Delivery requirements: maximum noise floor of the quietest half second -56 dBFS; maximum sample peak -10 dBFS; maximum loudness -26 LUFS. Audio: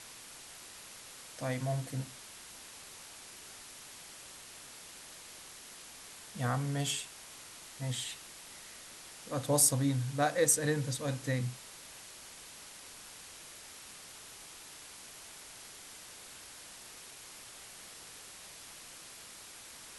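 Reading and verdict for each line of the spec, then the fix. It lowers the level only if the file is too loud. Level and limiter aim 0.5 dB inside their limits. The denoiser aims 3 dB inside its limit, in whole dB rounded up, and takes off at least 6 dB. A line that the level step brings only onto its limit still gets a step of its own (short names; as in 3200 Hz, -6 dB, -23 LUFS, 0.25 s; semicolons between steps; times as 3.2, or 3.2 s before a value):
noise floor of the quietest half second -51 dBFS: fail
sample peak -12.5 dBFS: OK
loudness -33.5 LUFS: OK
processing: denoiser 8 dB, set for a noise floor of -51 dBFS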